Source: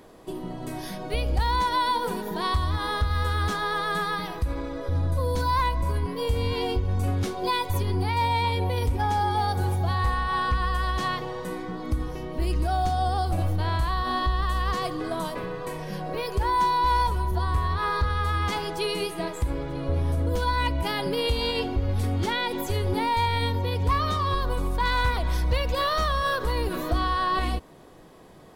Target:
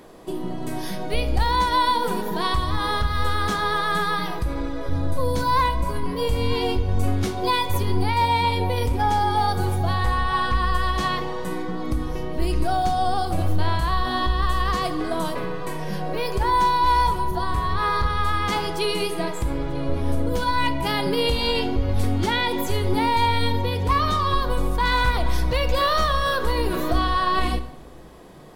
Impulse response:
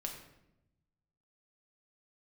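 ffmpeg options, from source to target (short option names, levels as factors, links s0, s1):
-filter_complex "[0:a]equalizer=f=73:w=5.2:g=-14.5,asplit=2[s0][s1];[1:a]atrim=start_sample=2205,asetrate=41895,aresample=44100[s2];[s1][s2]afir=irnorm=-1:irlink=0,volume=0.794[s3];[s0][s3]amix=inputs=2:normalize=0"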